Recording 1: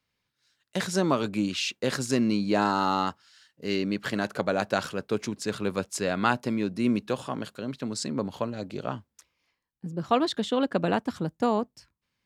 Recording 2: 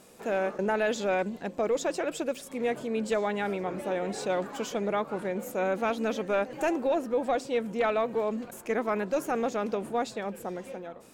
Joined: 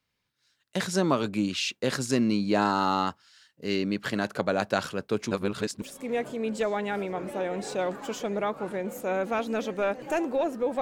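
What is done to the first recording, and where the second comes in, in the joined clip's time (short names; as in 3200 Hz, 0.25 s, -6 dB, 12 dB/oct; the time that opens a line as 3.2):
recording 1
5.31–5.82 reverse
5.82 switch to recording 2 from 2.33 s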